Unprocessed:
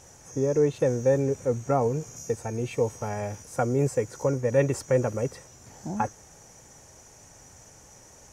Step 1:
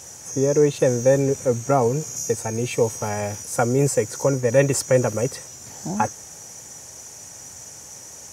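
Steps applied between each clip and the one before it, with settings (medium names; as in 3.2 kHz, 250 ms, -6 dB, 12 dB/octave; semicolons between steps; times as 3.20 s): high-pass 78 Hz; treble shelf 3.4 kHz +10.5 dB; trim +5 dB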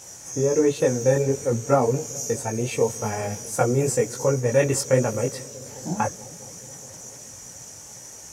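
chorus voices 6, 1.2 Hz, delay 20 ms, depth 3.6 ms; bucket-brigade echo 212 ms, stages 1024, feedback 81%, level -21.5 dB; trim +1.5 dB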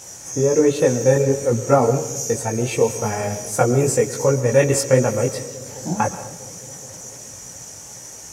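reverberation RT60 0.70 s, pre-delay 85 ms, DRR 12 dB; trim +4 dB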